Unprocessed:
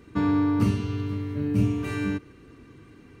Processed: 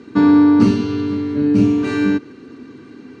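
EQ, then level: cabinet simulation 230–7200 Hz, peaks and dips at 250 Hz +9 dB, 400 Hz +4 dB, 860 Hz +4 dB, 1.5 kHz +5 dB, 4.3 kHz +6 dB; tilt EQ -2.5 dB/octave; treble shelf 3.5 kHz +12 dB; +5.5 dB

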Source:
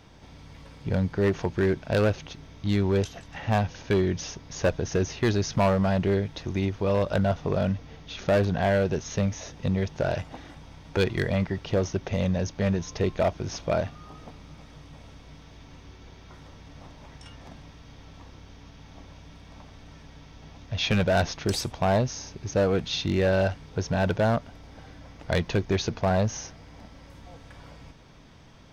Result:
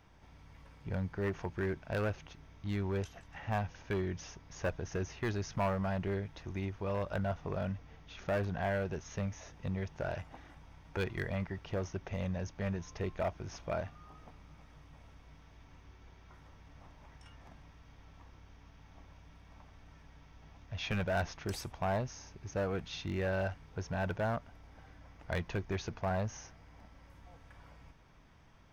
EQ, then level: graphic EQ 125/250/500/4000/8000 Hz -4/-5/-5/-8/-5 dB; -6.5 dB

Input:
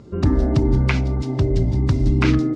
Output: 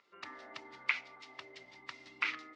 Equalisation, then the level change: ladder band-pass 2 kHz, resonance 50%; peaking EQ 1.6 kHz -13 dB 0.33 oct; +4.5 dB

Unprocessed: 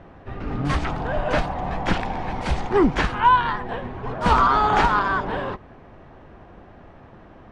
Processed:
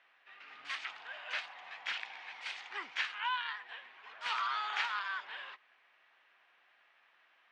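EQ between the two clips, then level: ladder band-pass 3.1 kHz, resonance 25%; +4.0 dB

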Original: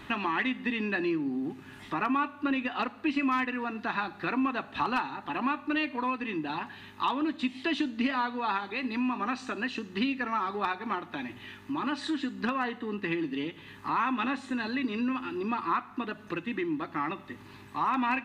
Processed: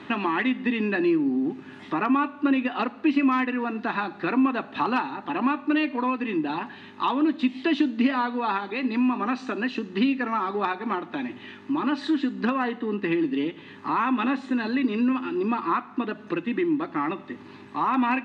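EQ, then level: band-pass 260–5400 Hz; bass shelf 410 Hz +12 dB; +2.0 dB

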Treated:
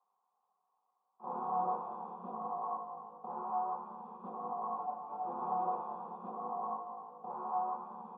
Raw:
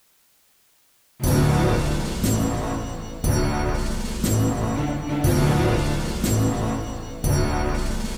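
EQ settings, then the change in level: cascade formant filter a; rippled Chebyshev high-pass 170 Hz, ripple 3 dB; static phaser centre 430 Hz, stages 8; +5.0 dB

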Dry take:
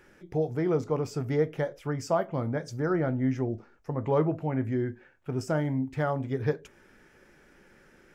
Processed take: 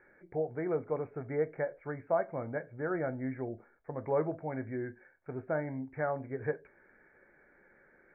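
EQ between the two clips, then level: rippled Chebyshev low-pass 2.3 kHz, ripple 6 dB; bass shelf 480 Hz -6.5 dB; 0.0 dB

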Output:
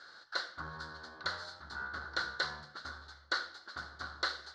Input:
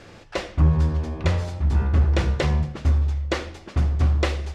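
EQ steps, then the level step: two resonant band-passes 2.5 kHz, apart 1.5 oct; +4.5 dB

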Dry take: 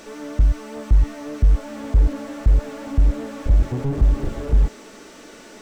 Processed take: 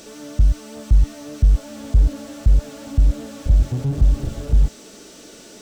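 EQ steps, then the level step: high-pass 64 Hz 6 dB/octave; dynamic bell 390 Hz, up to -6 dB, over -43 dBFS, Q 2; graphic EQ 250/500/1000/2000 Hz -5/-3/-10/-9 dB; +5.5 dB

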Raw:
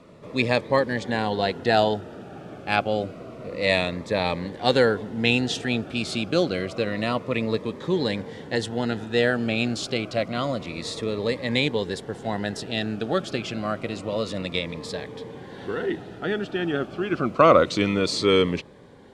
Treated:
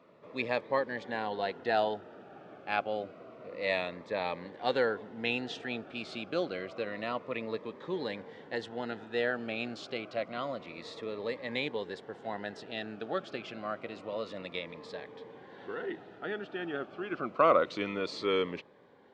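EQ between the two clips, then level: high-pass 740 Hz 6 dB/octave; tape spacing loss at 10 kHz 26 dB; -3.0 dB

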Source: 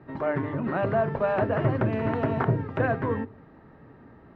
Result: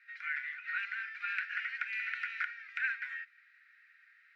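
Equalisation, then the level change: rippled Chebyshev high-pass 1.4 kHz, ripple 6 dB; peaking EQ 2.4 kHz +12.5 dB 0.29 oct; +3.5 dB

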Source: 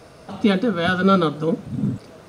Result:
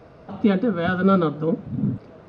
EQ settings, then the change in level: tape spacing loss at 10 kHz 29 dB; 0.0 dB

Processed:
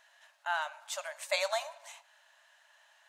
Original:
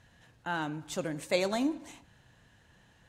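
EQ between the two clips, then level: brick-wall FIR high-pass 560 Hz; band-stop 760 Hz, Q 12; +2.0 dB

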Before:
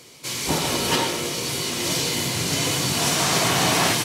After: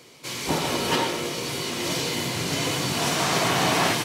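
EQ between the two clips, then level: bass shelf 110 Hz -7 dB; peaking EQ 9.9 kHz -7 dB 2.3 oct; 0.0 dB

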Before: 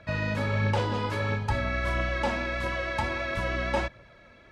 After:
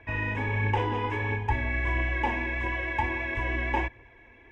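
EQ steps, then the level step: low-pass 4 kHz 12 dB/octave; static phaser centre 880 Hz, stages 8; +3.5 dB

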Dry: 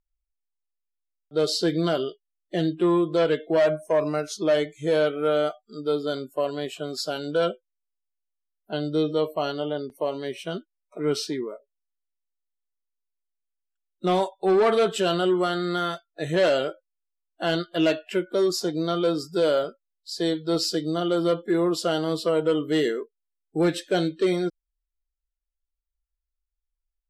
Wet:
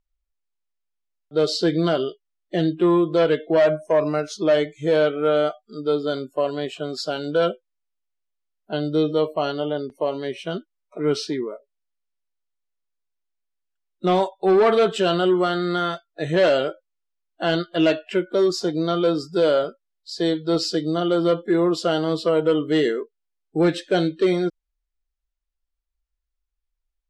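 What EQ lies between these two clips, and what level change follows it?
distance through air 68 m; +3.5 dB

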